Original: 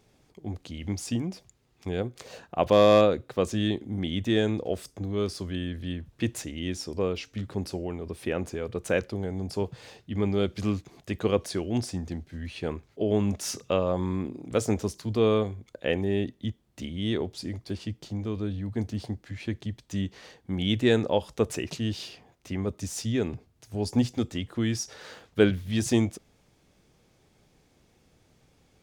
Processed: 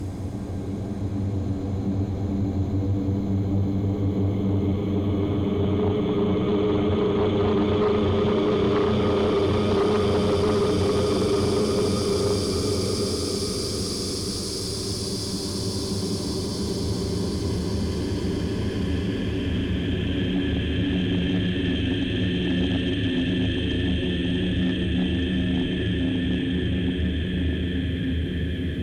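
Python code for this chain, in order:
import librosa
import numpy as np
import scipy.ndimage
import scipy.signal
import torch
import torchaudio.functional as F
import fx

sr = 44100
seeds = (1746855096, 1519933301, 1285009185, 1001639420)

y = fx.local_reverse(x, sr, ms=36.0)
y = fx.paulstretch(y, sr, seeds[0], factor=36.0, window_s=0.25, from_s=4.95)
y = fx.cheby_harmonics(y, sr, harmonics=(5,), levels_db=(-8,), full_scale_db=-15.0)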